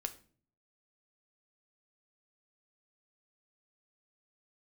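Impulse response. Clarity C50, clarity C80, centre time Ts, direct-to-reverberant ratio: 15.0 dB, 19.5 dB, 6 ms, 6.5 dB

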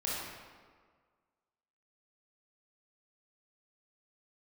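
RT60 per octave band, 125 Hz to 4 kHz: 1.6, 1.6, 1.7, 1.7, 1.4, 1.1 s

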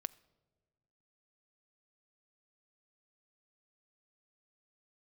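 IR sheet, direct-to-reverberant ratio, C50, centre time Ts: 18.0 dB, 21.5 dB, 2 ms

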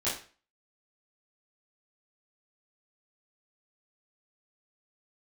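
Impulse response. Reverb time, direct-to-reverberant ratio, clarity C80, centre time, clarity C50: 0.40 s, -11.5 dB, 11.0 dB, 36 ms, 6.0 dB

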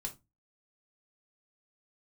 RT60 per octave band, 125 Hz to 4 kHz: 0.40, 0.35, 0.20, 0.20, 0.15, 0.15 s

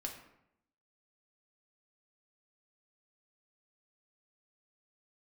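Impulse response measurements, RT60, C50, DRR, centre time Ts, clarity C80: 0.80 s, 7.0 dB, 0.5 dB, 25 ms, 9.5 dB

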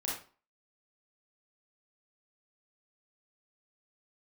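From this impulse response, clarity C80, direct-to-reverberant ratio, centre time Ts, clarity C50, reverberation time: 8.0 dB, -5.0 dB, 46 ms, 1.5 dB, 0.40 s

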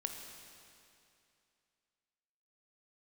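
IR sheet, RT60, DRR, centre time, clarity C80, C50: 2.6 s, 3.5 dB, 66 ms, 5.5 dB, 4.5 dB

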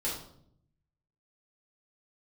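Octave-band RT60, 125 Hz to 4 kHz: 1.2, 1.0, 0.75, 0.60, 0.45, 0.50 s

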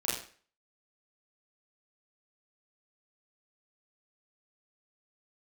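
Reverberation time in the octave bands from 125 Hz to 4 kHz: 0.40, 0.40, 0.45, 0.45, 0.45, 0.40 s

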